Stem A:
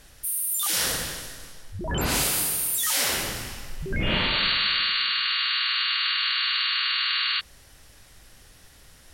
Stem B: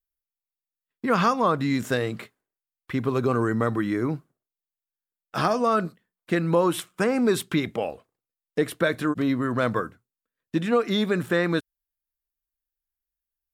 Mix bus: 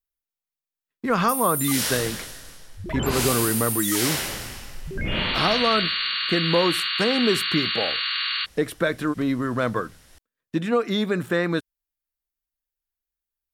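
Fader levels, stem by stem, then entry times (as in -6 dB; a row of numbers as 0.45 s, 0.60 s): -1.0 dB, 0.0 dB; 1.05 s, 0.00 s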